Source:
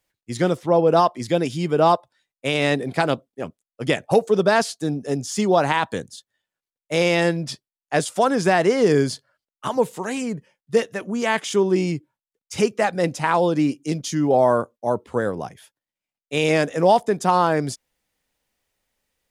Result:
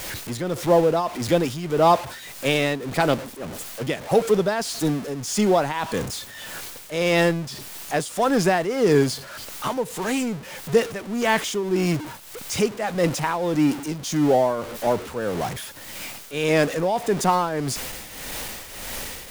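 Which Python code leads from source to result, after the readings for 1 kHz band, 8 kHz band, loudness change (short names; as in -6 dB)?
-2.5 dB, +3.0 dB, -2.0 dB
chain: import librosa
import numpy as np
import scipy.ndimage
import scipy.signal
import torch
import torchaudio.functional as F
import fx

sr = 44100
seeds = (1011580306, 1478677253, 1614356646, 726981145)

y = x + 0.5 * 10.0 ** (-24.5 / 20.0) * np.sign(x)
y = fx.tremolo_shape(y, sr, shape='triangle', hz=1.7, depth_pct=70)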